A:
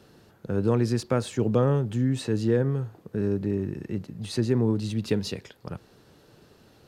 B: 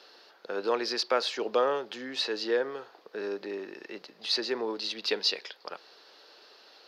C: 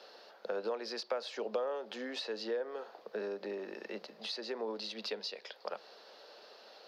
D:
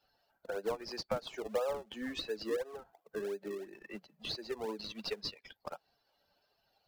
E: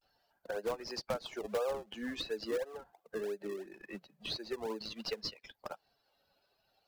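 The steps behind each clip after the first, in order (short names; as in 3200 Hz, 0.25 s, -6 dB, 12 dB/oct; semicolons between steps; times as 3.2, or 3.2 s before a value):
Bessel high-pass 660 Hz, order 4; resonant high shelf 6300 Hz -10.5 dB, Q 3; gain +4.5 dB
compressor 6:1, threshold -36 dBFS, peak gain reduction 14.5 dB; rippled Chebyshev high-pass 150 Hz, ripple 9 dB; gain +6 dB
per-bin expansion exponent 2; in parallel at -9 dB: decimation with a swept rate 40×, swing 100% 2.9 Hz; on the sum: gain +3.5 dB
vibrato 0.43 Hz 63 cents; in parallel at -10.5 dB: wrapped overs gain 26.5 dB; on the sum: gain -2 dB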